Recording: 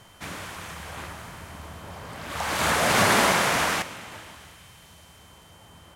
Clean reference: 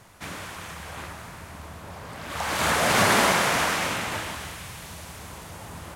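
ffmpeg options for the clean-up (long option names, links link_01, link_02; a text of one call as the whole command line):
ffmpeg -i in.wav -af "bandreject=frequency=3100:width=30,asetnsamples=nb_out_samples=441:pad=0,asendcmd='3.82 volume volume 11dB',volume=0dB" out.wav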